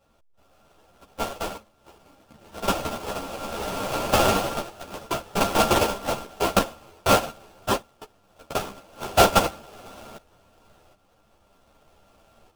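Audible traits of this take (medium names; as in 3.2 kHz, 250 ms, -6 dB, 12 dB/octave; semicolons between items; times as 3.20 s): a buzz of ramps at a fixed pitch in blocks of 32 samples; tremolo saw up 0.64 Hz, depth 65%; aliases and images of a low sample rate 2 kHz, jitter 20%; a shimmering, thickened sound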